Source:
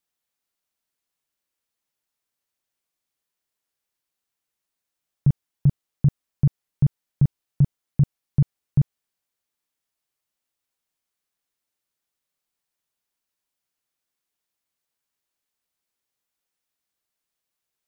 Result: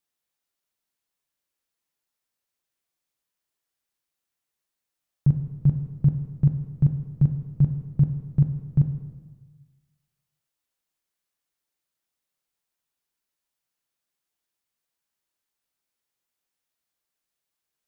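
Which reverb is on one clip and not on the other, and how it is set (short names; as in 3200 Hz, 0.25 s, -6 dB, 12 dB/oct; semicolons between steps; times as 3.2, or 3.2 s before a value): plate-style reverb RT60 1.4 s, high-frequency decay 0.85×, DRR 5.5 dB; gain -2 dB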